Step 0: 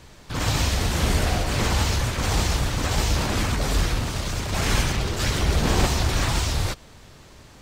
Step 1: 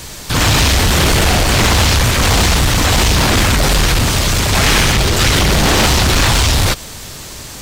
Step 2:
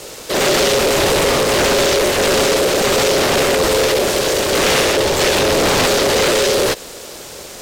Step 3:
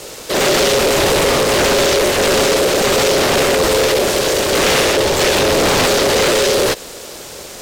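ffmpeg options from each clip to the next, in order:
-filter_complex "[0:a]acrossover=split=3900[a][b];[b]acompressor=threshold=-43dB:ratio=4:attack=1:release=60[c];[a][c]amix=inputs=2:normalize=0,aeval=exprs='0.355*sin(PI/2*3.16*val(0)/0.355)':c=same,crystalizer=i=3:c=0"
-af "aeval=exprs='val(0)*sin(2*PI*480*n/s)':c=same"
-af "aeval=exprs='clip(val(0),-1,0.355)':c=same,volume=1dB"

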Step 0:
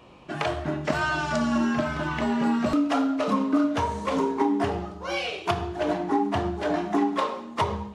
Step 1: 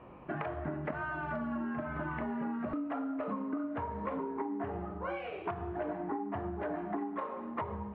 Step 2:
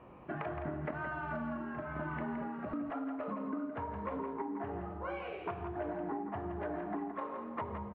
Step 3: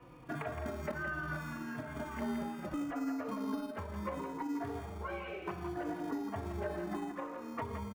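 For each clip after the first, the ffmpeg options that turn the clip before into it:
-af "acompressor=threshold=-32dB:ratio=12,lowpass=f=2k:w=0.5412,lowpass=f=2k:w=1.3066,volume=-1dB"
-af "aecho=1:1:168:0.422,volume=-2.5dB"
-filter_complex "[0:a]acrossover=split=230|820[a][b][c];[a]acrusher=samples=39:mix=1:aa=0.000001[d];[b]adynamicsmooth=sensitivity=2.5:basefreq=610[e];[d][e][c]amix=inputs=3:normalize=0,asplit=2[f][g];[g]adelay=3.6,afreqshift=-0.69[h];[f][h]amix=inputs=2:normalize=1,volume=4.5dB"

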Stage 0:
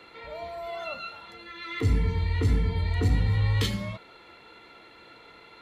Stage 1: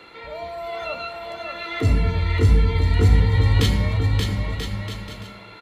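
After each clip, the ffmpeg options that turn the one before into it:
-af "aecho=1:1:580|986|1270|1469|1608:0.631|0.398|0.251|0.158|0.1,volume=5dB"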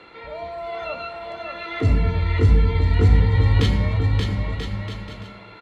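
-af "aemphasis=mode=reproduction:type=50fm"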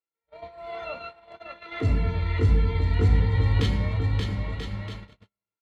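-af "agate=range=-49dB:threshold=-31dB:ratio=16:detection=peak,volume=-5dB"

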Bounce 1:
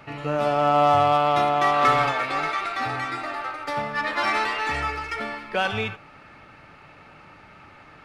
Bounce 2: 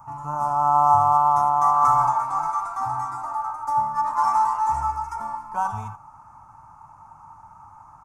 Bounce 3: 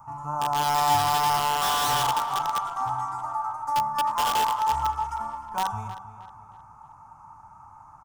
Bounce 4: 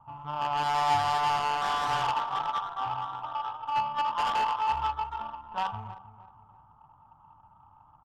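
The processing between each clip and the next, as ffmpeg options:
-af "firequalizer=gain_entry='entry(110,0);entry(160,-6);entry(470,-24);entry(920,13);entry(1800,-23);entry(2800,-28);entry(4000,-26);entry(6200,2)':delay=0.05:min_phase=1"
-filter_complex "[0:a]acrossover=split=980[a][b];[b]aeval=exprs='(mod(11.9*val(0)+1,2)-1)/11.9':c=same[c];[a][c]amix=inputs=2:normalize=0,asplit=2[d][e];[e]adelay=313,lowpass=f=3.9k:p=1,volume=-13dB,asplit=2[f][g];[g]adelay=313,lowpass=f=3.9k:p=1,volume=0.42,asplit=2[h][i];[i]adelay=313,lowpass=f=3.9k:p=1,volume=0.42,asplit=2[j][k];[k]adelay=313,lowpass=f=3.9k:p=1,volume=0.42[l];[d][f][h][j][l]amix=inputs=5:normalize=0,volume=-2dB"
-af "adynamicsmooth=sensitivity=1:basefreq=790,tiltshelf=f=1.2k:g=-4,volume=-1.5dB"

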